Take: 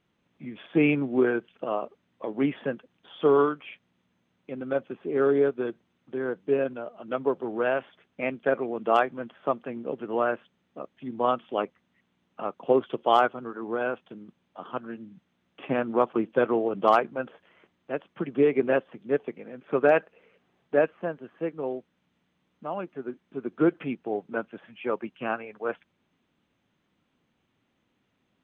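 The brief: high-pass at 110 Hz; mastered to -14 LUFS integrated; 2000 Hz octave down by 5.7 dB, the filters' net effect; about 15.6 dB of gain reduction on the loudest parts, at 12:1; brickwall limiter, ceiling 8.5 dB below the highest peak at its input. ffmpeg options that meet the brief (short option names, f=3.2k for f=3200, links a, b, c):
-af "highpass=110,equalizer=f=2k:t=o:g=-8.5,acompressor=threshold=-32dB:ratio=12,volume=27.5dB,alimiter=limit=-2dB:level=0:latency=1"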